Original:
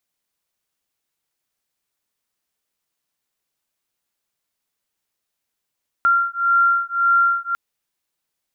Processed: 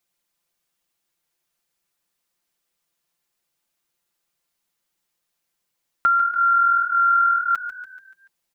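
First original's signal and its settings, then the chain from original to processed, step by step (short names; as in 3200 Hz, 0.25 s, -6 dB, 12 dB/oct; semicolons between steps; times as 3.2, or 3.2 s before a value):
beating tones 1380 Hz, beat 1.8 Hz, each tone -17.5 dBFS 1.50 s
comb 5.8 ms, depth 72%; compressor, threshold -16 dBFS; on a send: frequency-shifting echo 0.144 s, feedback 51%, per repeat +41 Hz, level -11.5 dB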